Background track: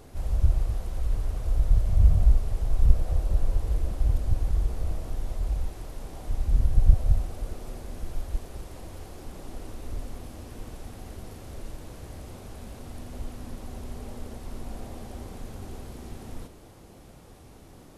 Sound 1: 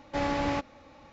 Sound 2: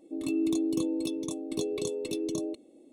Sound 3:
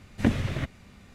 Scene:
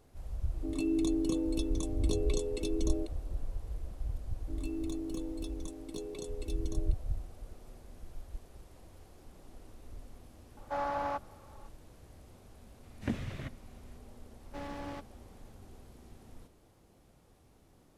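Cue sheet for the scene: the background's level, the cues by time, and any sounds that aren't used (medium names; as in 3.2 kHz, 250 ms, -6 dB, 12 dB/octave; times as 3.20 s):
background track -13.5 dB
0.52 s: add 2 -2.5 dB + low-pass 11 kHz
4.37 s: add 2 -10 dB
10.57 s: add 1 -14.5 dB + high-order bell 940 Hz +13 dB
12.83 s: add 3 -11 dB
14.40 s: add 1 -13 dB + sliding maximum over 9 samples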